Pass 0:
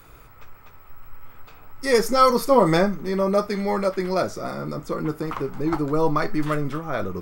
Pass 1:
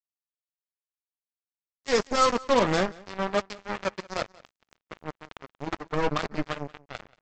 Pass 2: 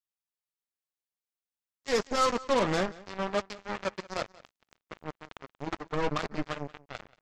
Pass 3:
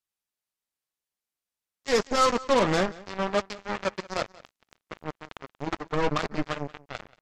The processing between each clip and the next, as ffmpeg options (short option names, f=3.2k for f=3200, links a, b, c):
-af "aresample=16000,acrusher=bits=2:mix=0:aa=0.5,aresample=44100,aecho=1:1:182:0.0708,volume=-6dB"
-af "asoftclip=type=tanh:threshold=-16.5dB,volume=-1.5dB"
-af "aresample=32000,aresample=44100,volume=4dB"